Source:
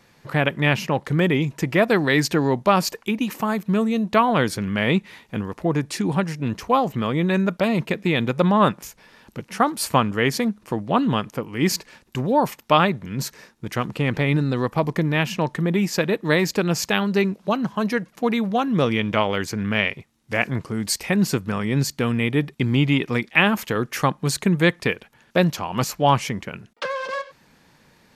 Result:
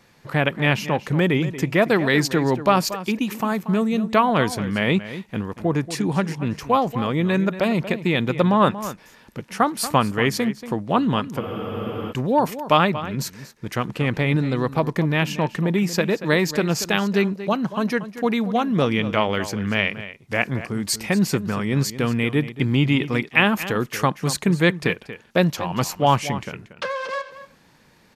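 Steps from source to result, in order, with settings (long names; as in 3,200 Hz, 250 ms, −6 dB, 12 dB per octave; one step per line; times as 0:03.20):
slap from a distant wall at 40 metres, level −13 dB
frozen spectrum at 0:11.42, 0.69 s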